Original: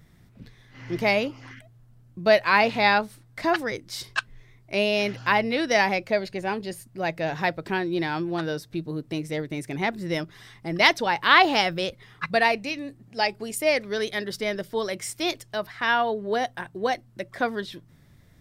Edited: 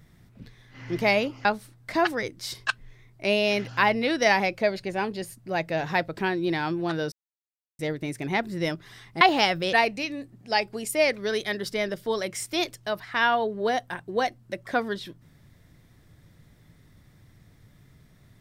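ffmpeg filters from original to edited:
-filter_complex "[0:a]asplit=6[a][b][c][d][e][f];[a]atrim=end=1.452[g];[b]atrim=start=2.938:end=8.61,asetpts=PTS-STARTPTS,afade=t=out:st=5.668:d=0.004:c=hsin[h];[c]atrim=start=8.61:end=9.28,asetpts=PTS-STARTPTS,volume=0[i];[d]atrim=start=9.28:end=10.702,asetpts=PTS-STARTPTS,afade=t=in:d=0.004:c=hsin[j];[e]atrim=start=11.368:end=11.892[k];[f]atrim=start=12.398[l];[h][i][j]concat=n=3:v=0:a=1[m];[g][m]acrossfade=d=0.004:c1=hsin:c2=hsin[n];[n][k]acrossfade=d=0.004:c1=hsin:c2=hsin[o];[o][l]acrossfade=d=0.004:c1=hsin:c2=hsin"

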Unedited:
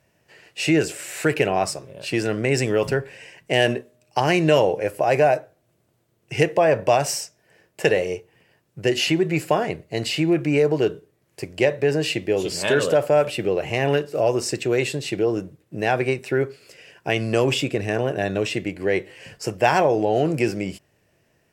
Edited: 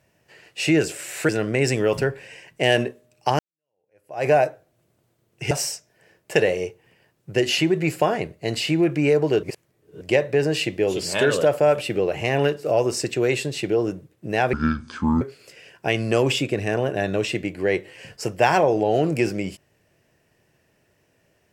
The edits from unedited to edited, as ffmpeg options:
-filter_complex "[0:a]asplit=8[a][b][c][d][e][f][g][h];[a]atrim=end=1.292[i];[b]atrim=start=2.188:end=4.29,asetpts=PTS-STARTPTS,afade=t=out:st=2.098:d=0.004:c=hsin[j];[c]atrim=start=4.29:end=6.412,asetpts=PTS-STARTPTS,afade=t=in:d=0.88:c=exp[k];[d]atrim=start=6.998:end=10.922[l];[e]atrim=start=10.918:end=11.502,asetpts=PTS-STARTPTS,areverse[m];[f]atrim=start=11.498:end=16.024[n];[g]atrim=start=16.02:end=16.43,asetpts=PTS-STARTPTS,asetrate=26460,aresample=44100[o];[h]atrim=start=16.426[p];[j][k]concat=n=2:v=0:a=1[q];[i][q]acrossfade=d=0.004:c1=hsin:c2=hsin[r];[r][l]acrossfade=d=0.004:c1=hsin:c2=hsin[s];[s][m]acrossfade=d=0.004:c1=hsin:c2=hsin[t];[t][n]acrossfade=d=0.004:c1=hsin:c2=hsin[u];[u][o]acrossfade=d=0.004:c1=hsin:c2=hsin[v];[v][p]acrossfade=d=0.004:c1=hsin:c2=hsin"

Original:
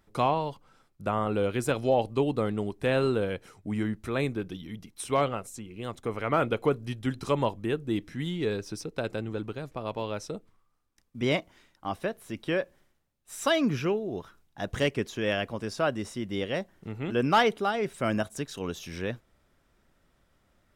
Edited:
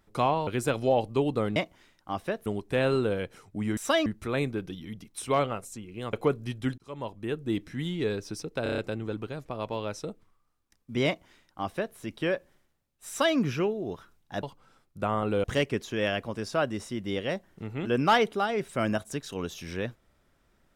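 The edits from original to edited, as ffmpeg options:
-filter_complex "[0:a]asplit=15[a][b][c][d][e][f][g][h][i][j][k][l][m][n][o];[a]atrim=end=0.472[p];[b]atrim=start=1.478:end=2.572[q];[c]atrim=start=11.318:end=12.222[r];[d]atrim=start=2.568:end=3.882[s];[e]atrim=start=13.338:end=13.632[t];[f]atrim=start=3.878:end=5.952[u];[g]atrim=start=6.538:end=7.19,asetpts=PTS-STARTPTS,afade=t=out:st=0.648:d=0.004:c=hsin[v];[h]atrim=start=7.19:end=9.072,asetpts=PTS-STARTPTS,afade=t=in:d=0.72[w];[i]atrim=start=9.038:end=9.072[x];[j]atrim=start=9.038:end=9.072[y];[k]atrim=start=9.038:end=9.072[z];[l]atrim=start=9.038:end=9.072[aa];[m]atrim=start=9.038:end=14.692[ab];[n]atrim=start=0.468:end=1.482[ac];[o]atrim=start=14.688[ad];[p][q]acrossfade=d=0.004:c1=hsin:c2=hsin[ae];[ae][r]acrossfade=d=0.004:c1=hsin:c2=hsin[af];[af][s]acrossfade=d=0.004:c1=hsin:c2=hsin[ag];[ag][t]acrossfade=d=0.004:c1=hsin:c2=hsin[ah];[ah][u]acrossfade=d=0.004:c1=hsin:c2=hsin[ai];[v][w]concat=n=2:v=0:a=1[aj];[ai][aj]acrossfade=d=0.004:c1=hsin:c2=hsin[ak];[ak][x]acrossfade=d=0.004:c1=hsin:c2=hsin[al];[al][y]acrossfade=d=0.004:c1=hsin:c2=hsin[am];[am][z]acrossfade=d=0.004:c1=hsin:c2=hsin[an];[an][aa]acrossfade=d=0.004:c1=hsin:c2=hsin[ao];[ao][ab]acrossfade=d=0.004:c1=hsin:c2=hsin[ap];[ap][ac]acrossfade=d=0.004:c1=hsin:c2=hsin[aq];[aq][ad]acrossfade=d=0.004:c1=hsin:c2=hsin"

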